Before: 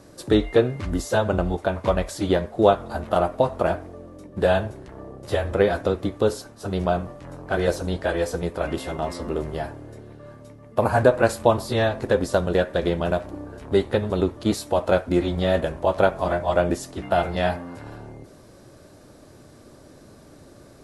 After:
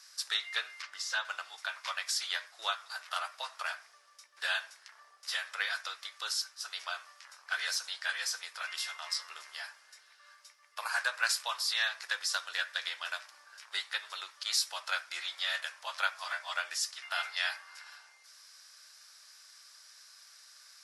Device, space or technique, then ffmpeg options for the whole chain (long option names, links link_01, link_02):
headphones lying on a table: -filter_complex "[0:a]highpass=frequency=1400:width=0.5412,highpass=frequency=1400:width=1.3066,equalizer=frequency=5200:width_type=o:width=0.52:gain=11,asettb=1/sr,asplit=3[link_01][link_02][link_03];[link_01]atrim=end=0.824[link_04];[link_02]atrim=start=0.82:end=1.25,asetpts=PTS-STARTPTS,afade=type=in:duration=0.004:curve=qsin,afade=type=out:start_time=0.426:duration=0.004:curve=qsin,aemphasis=mode=reproduction:type=50fm[link_05];[link_03]atrim=start=1.246[link_06];[link_04][link_05]acrossfade=duration=0.004:curve1=hsin:curve2=qsin[link_07];[link_07][link_06]acrossfade=duration=0.004:curve1=qsin:curve2=hsin,volume=-1dB"